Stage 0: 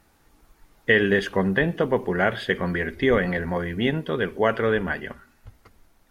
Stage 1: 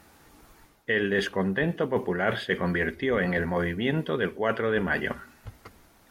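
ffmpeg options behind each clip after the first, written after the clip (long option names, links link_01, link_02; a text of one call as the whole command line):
ffmpeg -i in.wav -af "highpass=frequency=85:poles=1,areverse,acompressor=threshold=-30dB:ratio=5,areverse,volume=6.5dB" out.wav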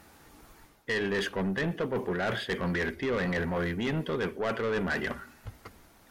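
ffmpeg -i in.wav -af "asoftclip=type=tanh:threshold=-24.5dB" out.wav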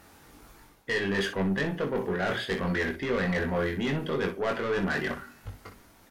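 ffmpeg -i in.wav -af "aecho=1:1:21|61:0.596|0.316" out.wav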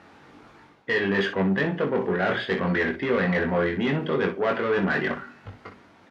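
ffmpeg -i in.wav -af "highpass=120,lowpass=3200,volume=5dB" out.wav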